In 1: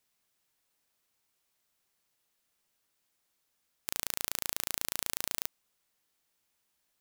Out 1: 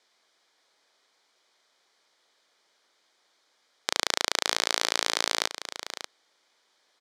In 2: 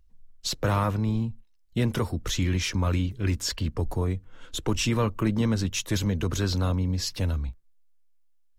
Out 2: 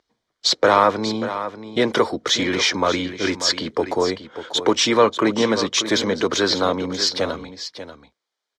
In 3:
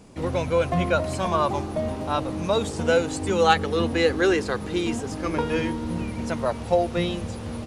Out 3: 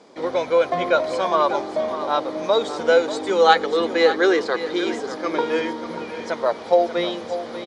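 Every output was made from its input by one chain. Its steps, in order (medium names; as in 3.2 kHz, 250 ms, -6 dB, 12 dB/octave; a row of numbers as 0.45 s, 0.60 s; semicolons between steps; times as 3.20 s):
Chebyshev band-pass 420–4500 Hz, order 2; band-stop 2.7 kHz, Q 5.1; on a send: delay 589 ms -11.5 dB; on the sum: peak normalisation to -1.5 dBFS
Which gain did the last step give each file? +15.5 dB, +14.0 dB, +5.0 dB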